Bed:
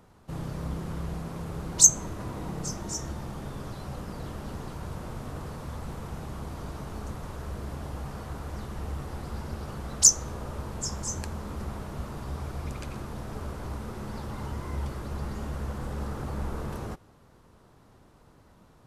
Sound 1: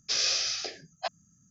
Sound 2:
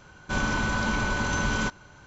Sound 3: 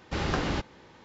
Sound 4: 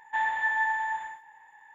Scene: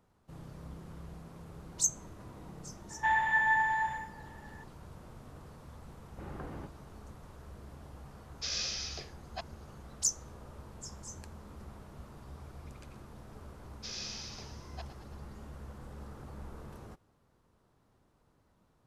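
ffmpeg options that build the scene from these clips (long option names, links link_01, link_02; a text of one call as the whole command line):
ffmpeg -i bed.wav -i cue0.wav -i cue1.wav -i cue2.wav -i cue3.wav -filter_complex "[1:a]asplit=2[link_01][link_02];[0:a]volume=-13dB[link_03];[3:a]lowpass=1300[link_04];[link_02]asplit=9[link_05][link_06][link_07][link_08][link_09][link_10][link_11][link_12][link_13];[link_06]adelay=111,afreqshift=54,volume=-11dB[link_14];[link_07]adelay=222,afreqshift=108,volume=-15dB[link_15];[link_08]adelay=333,afreqshift=162,volume=-19dB[link_16];[link_09]adelay=444,afreqshift=216,volume=-23dB[link_17];[link_10]adelay=555,afreqshift=270,volume=-27.1dB[link_18];[link_11]adelay=666,afreqshift=324,volume=-31.1dB[link_19];[link_12]adelay=777,afreqshift=378,volume=-35.1dB[link_20];[link_13]adelay=888,afreqshift=432,volume=-39.1dB[link_21];[link_05][link_14][link_15][link_16][link_17][link_18][link_19][link_20][link_21]amix=inputs=9:normalize=0[link_22];[4:a]atrim=end=1.74,asetpts=PTS-STARTPTS,volume=-0.5dB,afade=type=in:duration=0.004:curve=hsin,afade=type=out:start_time=1.736:duration=0.004:curve=hsin,adelay=2900[link_23];[link_04]atrim=end=1.04,asetpts=PTS-STARTPTS,volume=-14.5dB,afade=type=in:duration=0.004:curve=hsin,afade=type=out:start_time=1.036:duration=0.004:curve=hsin,adelay=6060[link_24];[link_01]atrim=end=1.5,asetpts=PTS-STARTPTS,volume=-8.5dB,afade=type=in:duration=0.004:curve=hsin,afade=type=out:start_time=1.496:duration=0.004:curve=hsin,adelay=8330[link_25];[link_22]atrim=end=1.5,asetpts=PTS-STARTPTS,volume=-15dB,afade=type=in:duration=0.004:curve=hsin,afade=type=out:start_time=1.496:duration=0.004:curve=hsin,adelay=13740[link_26];[link_03][link_23][link_24][link_25][link_26]amix=inputs=5:normalize=0" out.wav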